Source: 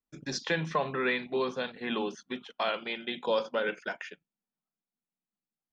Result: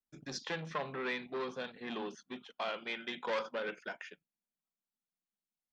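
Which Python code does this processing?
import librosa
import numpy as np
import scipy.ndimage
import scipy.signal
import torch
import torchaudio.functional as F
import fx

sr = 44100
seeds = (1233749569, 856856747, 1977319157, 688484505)

y = fx.peak_eq(x, sr, hz=1400.0, db=10.0, octaves=1.1, at=(2.87, 3.54))
y = fx.transformer_sat(y, sr, knee_hz=1600.0)
y = F.gain(torch.from_numpy(y), -6.0).numpy()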